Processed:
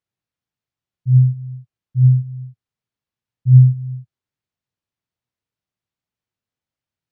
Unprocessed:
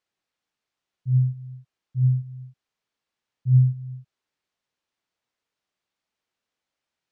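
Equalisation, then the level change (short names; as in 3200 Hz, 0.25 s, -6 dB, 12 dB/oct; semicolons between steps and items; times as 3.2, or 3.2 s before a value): bell 110 Hz +11 dB 1.4 oct; low shelf 240 Hz +7 dB; -7.0 dB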